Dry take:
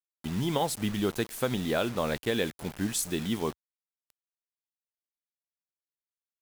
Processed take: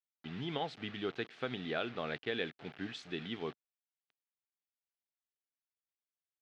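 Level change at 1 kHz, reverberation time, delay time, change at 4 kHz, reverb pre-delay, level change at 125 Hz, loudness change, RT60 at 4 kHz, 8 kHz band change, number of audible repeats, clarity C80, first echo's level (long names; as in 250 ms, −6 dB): −8.5 dB, no reverb audible, no echo audible, −6.5 dB, no reverb audible, −12.5 dB, −9.5 dB, no reverb audible, −30.0 dB, no echo audible, no reverb audible, no echo audible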